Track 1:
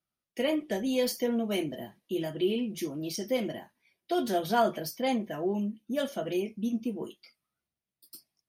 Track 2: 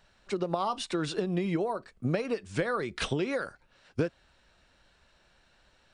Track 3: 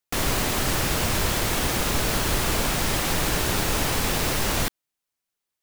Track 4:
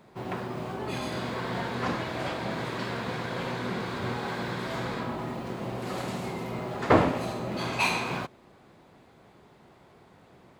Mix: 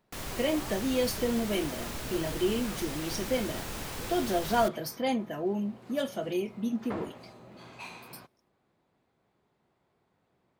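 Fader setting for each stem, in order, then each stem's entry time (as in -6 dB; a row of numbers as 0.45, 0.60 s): -0.5, -18.0, -14.5, -18.0 dB; 0.00, 0.00, 0.00, 0.00 s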